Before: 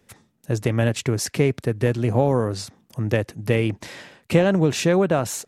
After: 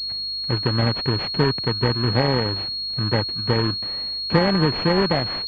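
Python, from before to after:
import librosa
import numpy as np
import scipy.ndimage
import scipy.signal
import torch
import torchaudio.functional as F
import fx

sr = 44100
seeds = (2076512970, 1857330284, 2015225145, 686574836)

y = fx.bit_reversed(x, sr, seeds[0], block=32)
y = fx.dmg_buzz(y, sr, base_hz=50.0, harmonics=6, level_db=-52.0, tilt_db=-8, odd_only=False)
y = fx.pwm(y, sr, carrier_hz=4300.0)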